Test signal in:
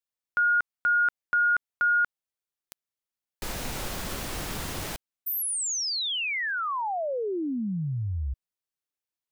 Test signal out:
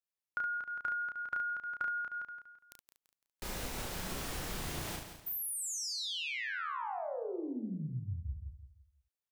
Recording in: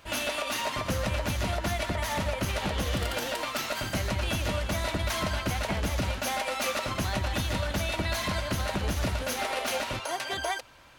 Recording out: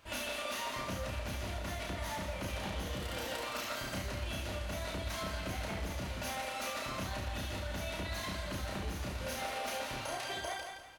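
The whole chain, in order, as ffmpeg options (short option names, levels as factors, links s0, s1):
-filter_complex "[0:a]asplit=2[s0][s1];[s1]aecho=0:1:169|338|507|676:0.335|0.117|0.041|0.0144[s2];[s0][s2]amix=inputs=2:normalize=0,acompressor=threshold=0.0251:ratio=6:attack=50:release=257:knee=1:detection=peak,asplit=2[s3][s4];[s4]aecho=0:1:32|70:0.708|0.501[s5];[s3][s5]amix=inputs=2:normalize=0,volume=0.398"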